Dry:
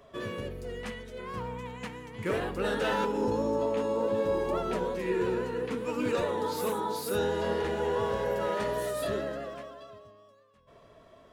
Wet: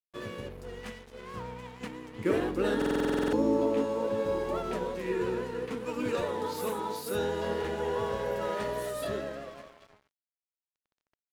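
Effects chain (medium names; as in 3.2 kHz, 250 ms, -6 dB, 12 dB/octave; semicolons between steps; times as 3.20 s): 1.80–3.85 s: peaking EQ 310 Hz +11.5 dB 0.66 oct; crossover distortion -46.5 dBFS; buffer glitch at 2.77 s, samples 2048, times 11; trim -1 dB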